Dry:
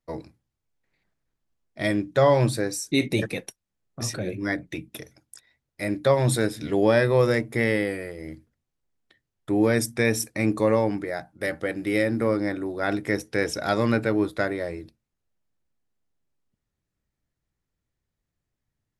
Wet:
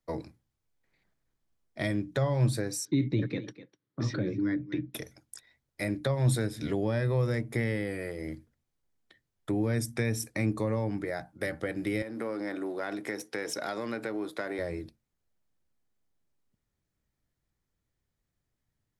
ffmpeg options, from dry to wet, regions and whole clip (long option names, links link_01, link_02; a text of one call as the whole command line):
ffmpeg -i in.wav -filter_complex "[0:a]asettb=1/sr,asplit=3[link_01][link_02][link_03];[link_01]atrim=end=2.854[link_04];[link_02]atrim=start=2.85:end=4.94,asetpts=PTS-STARTPTS,afade=type=in:duration=0.004:curve=qsin,afade=type=out:start_time=2.086:duration=0.004:curve=qsin,highpass=120,equalizer=frequency=130:width_type=q:width=4:gain=8,equalizer=frequency=300:width_type=q:width=4:gain=10,equalizer=frequency=710:width_type=q:width=4:gain=-10,equalizer=frequency=2600:width_type=q:width=4:gain=-7,lowpass=frequency=4100:width=0.5412,lowpass=frequency=4100:width=1.3066,aecho=1:1:250:0.1,atrim=end_sample=92169[link_05];[link_03]atrim=start=4.936[link_06];[link_04][link_05]acrossfade=duration=0.004:curve1=hsin:curve2=qsin[link_07];[link_07][link_06]acrossfade=duration=0.004:curve1=qsin:curve2=hsin,asettb=1/sr,asplit=3[link_08][link_09][link_10];[link_08]atrim=end=12.024[link_11];[link_09]atrim=start=12.02:end=14.59,asetpts=PTS-STARTPTS,afade=type=in:duration=0.004:curve=qsin,afade=type=out:start_time=2.566:duration=0.004:curve=qsin,aeval=exprs='if(lt(val(0),0),0.708*val(0),val(0))':channel_layout=same,acompressor=threshold=-27dB:ratio=2.5:attack=3.2:release=140:knee=1:detection=peak,highpass=260[link_12];[link_10]atrim=start=14.586[link_13];[link_11][link_12]acrossfade=duration=0.004:curve1=hsin:curve2=qsin[link_14];[link_14][link_13]acrossfade=duration=0.004:curve1=qsin:curve2=hsin,bandreject=frequency=2700:width=24,acrossover=split=170[link_15][link_16];[link_16]acompressor=threshold=-30dB:ratio=6[link_17];[link_15][link_17]amix=inputs=2:normalize=0" out.wav